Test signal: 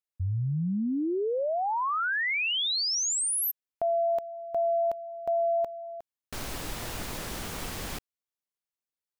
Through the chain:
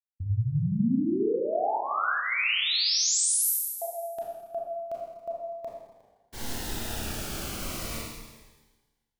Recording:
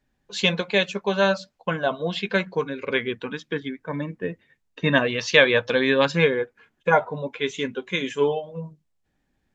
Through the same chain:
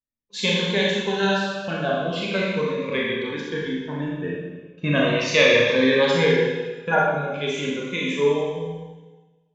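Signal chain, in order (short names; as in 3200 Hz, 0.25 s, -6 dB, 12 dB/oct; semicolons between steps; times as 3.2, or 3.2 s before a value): expander -35 dBFS, range -25 dB; Schroeder reverb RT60 1.3 s, combs from 27 ms, DRR -4.5 dB; cascading phaser falling 0.37 Hz; gain -2.5 dB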